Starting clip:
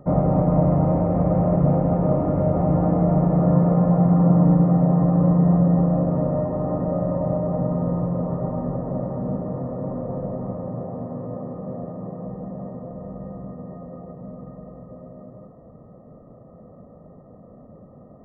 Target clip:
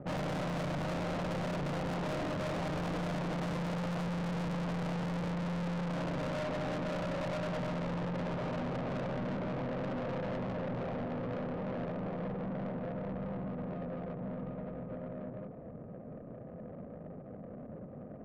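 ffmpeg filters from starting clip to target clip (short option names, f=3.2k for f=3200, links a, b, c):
-af "lowshelf=f=100:g=-7.5,adynamicsmooth=sensitivity=6:basefreq=570,aeval=exprs='(tanh(70.8*val(0)+0.15)-tanh(0.15))/70.8':c=same,volume=2.5dB"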